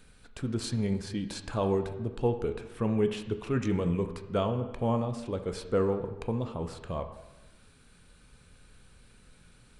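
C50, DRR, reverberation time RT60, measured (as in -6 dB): 10.0 dB, 7.0 dB, 1.1 s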